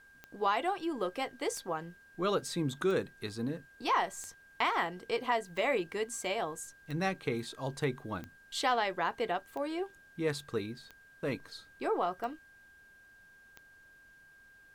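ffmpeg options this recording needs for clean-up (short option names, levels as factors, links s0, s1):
-af "adeclick=t=4,bandreject=f=1600:w=30,agate=range=0.0891:threshold=0.00251"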